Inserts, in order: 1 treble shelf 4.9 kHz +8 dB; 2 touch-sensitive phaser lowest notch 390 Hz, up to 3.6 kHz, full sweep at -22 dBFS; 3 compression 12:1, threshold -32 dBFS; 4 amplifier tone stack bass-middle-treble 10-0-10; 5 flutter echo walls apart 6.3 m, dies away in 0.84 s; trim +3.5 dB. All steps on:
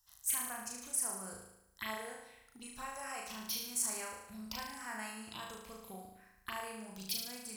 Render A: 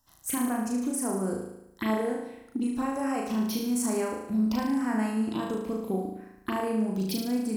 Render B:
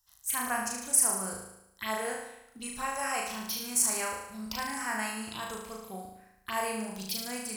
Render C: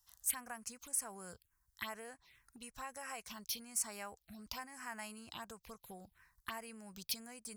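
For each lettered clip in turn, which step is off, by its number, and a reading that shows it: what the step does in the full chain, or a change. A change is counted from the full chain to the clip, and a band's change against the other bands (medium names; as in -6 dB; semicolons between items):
4, 250 Hz band +16.0 dB; 3, mean gain reduction 9.0 dB; 5, crest factor change +3.0 dB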